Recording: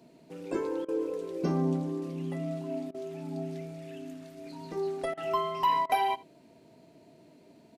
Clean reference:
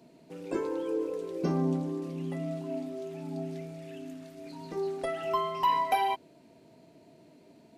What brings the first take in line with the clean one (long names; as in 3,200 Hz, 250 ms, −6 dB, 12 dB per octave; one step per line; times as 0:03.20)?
repair the gap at 0:00.85/0:02.91/0:05.14/0:05.86, 33 ms
echo removal 79 ms −22 dB